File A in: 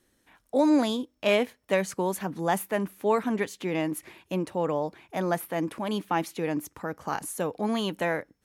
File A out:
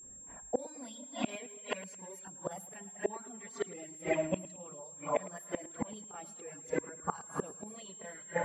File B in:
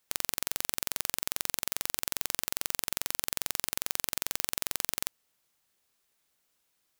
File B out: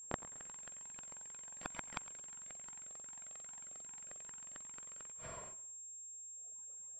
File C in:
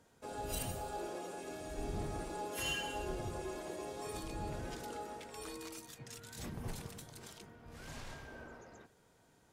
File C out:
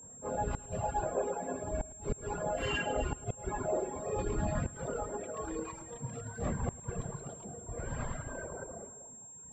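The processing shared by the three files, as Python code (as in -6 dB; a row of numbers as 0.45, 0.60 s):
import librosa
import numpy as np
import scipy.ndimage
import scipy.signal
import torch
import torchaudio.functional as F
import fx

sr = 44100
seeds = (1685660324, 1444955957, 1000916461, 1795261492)

p1 = fx.chorus_voices(x, sr, voices=6, hz=0.62, base_ms=28, depth_ms=1.1, mix_pct=70)
p2 = fx.rev_gated(p1, sr, seeds[0], gate_ms=450, shape='flat', drr_db=3.5)
p3 = fx.env_lowpass(p2, sr, base_hz=790.0, full_db=-23.0)
p4 = fx.dereverb_blind(p3, sr, rt60_s=1.7)
p5 = fx.notch(p4, sr, hz=7000.0, q=22.0)
p6 = fx.dynamic_eq(p5, sr, hz=740.0, q=1.3, threshold_db=-44.0, ratio=4.0, max_db=-3)
p7 = fx.rider(p6, sr, range_db=4, speed_s=0.5)
p8 = p6 + (p7 * 10.0 ** (-0.5 / 20.0))
p9 = fx.gate_flip(p8, sr, shuts_db=-25.0, range_db=-32)
p10 = fx.low_shelf(p9, sr, hz=150.0, db=-8.5)
p11 = p10 + 10.0 ** (-58.0 / 20.0) * np.sin(2.0 * np.pi * 7500.0 * np.arange(len(p10)) / sr)
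p12 = p11 + fx.echo_feedback(p11, sr, ms=108, feedback_pct=40, wet_db=-18, dry=0)
y = p12 * 10.0 ** (8.5 / 20.0)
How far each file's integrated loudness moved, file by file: -11.5, -16.0, +6.0 LU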